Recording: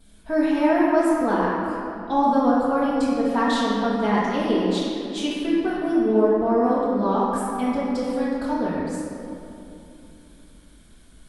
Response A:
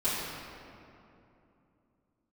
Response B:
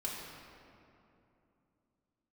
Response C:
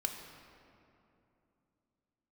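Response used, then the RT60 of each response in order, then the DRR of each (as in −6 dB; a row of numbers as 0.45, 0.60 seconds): A; 2.8, 2.8, 2.8 seconds; −14.0, −5.0, 3.0 decibels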